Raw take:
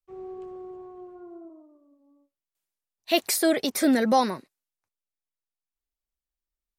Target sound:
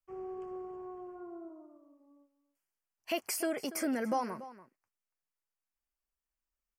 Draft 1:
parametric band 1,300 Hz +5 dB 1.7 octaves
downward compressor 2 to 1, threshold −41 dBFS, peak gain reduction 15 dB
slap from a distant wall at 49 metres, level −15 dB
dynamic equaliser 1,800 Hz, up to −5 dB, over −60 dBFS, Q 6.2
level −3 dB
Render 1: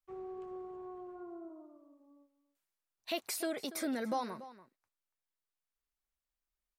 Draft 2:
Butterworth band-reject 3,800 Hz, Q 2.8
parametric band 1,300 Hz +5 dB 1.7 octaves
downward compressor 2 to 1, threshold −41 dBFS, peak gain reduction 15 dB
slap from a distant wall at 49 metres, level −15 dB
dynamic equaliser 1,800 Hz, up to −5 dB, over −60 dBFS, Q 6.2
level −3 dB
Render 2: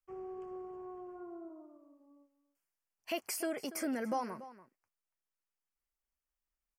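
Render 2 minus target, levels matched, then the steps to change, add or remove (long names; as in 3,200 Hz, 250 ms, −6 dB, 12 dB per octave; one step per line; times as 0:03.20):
downward compressor: peak gain reduction +3 dB
change: downward compressor 2 to 1, threshold −35 dBFS, peak gain reduction 12 dB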